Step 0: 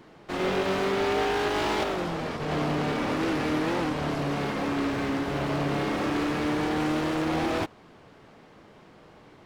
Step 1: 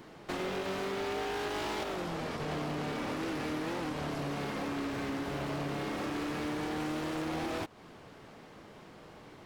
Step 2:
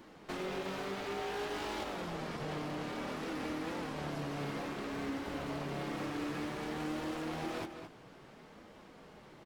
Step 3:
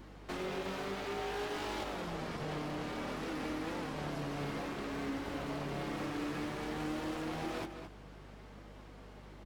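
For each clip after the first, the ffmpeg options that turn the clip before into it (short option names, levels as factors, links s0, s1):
-af "highshelf=f=6300:g=6.5,acompressor=threshold=0.02:ratio=5"
-filter_complex "[0:a]flanger=delay=3.4:depth=3.4:regen=-48:speed=0.57:shape=triangular,asplit=2[s0][s1];[s1]adelay=215.7,volume=0.398,highshelf=f=4000:g=-4.85[s2];[s0][s2]amix=inputs=2:normalize=0"
-af "aeval=exprs='val(0)+0.00224*(sin(2*PI*50*n/s)+sin(2*PI*2*50*n/s)/2+sin(2*PI*3*50*n/s)/3+sin(2*PI*4*50*n/s)/4+sin(2*PI*5*50*n/s)/5)':c=same"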